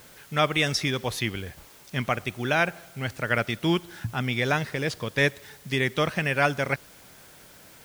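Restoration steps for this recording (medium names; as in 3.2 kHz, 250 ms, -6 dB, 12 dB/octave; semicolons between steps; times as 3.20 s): noise reduction 20 dB, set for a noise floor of -51 dBFS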